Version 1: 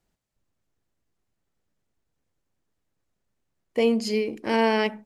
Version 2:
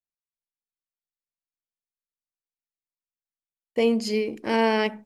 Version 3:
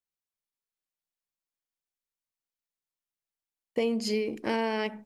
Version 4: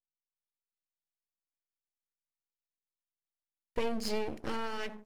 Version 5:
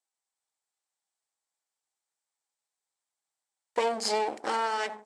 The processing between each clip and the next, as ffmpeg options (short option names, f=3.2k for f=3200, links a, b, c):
-af "agate=range=-33dB:threshold=-44dB:ratio=3:detection=peak"
-af "acompressor=threshold=-25dB:ratio=4"
-af "aeval=exprs='max(val(0),0)':c=same"
-af "highpass=460,equalizer=f=810:t=q:w=4:g=8,equalizer=f=2.7k:t=q:w=4:g=-5,equalizer=f=7.9k:t=q:w=4:g=8,lowpass=f=9.6k:w=0.5412,lowpass=f=9.6k:w=1.3066,volume=8dB"